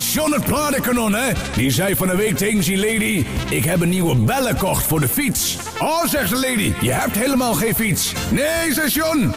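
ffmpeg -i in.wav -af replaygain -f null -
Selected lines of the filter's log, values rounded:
track_gain = +2.0 dB
track_peak = 0.269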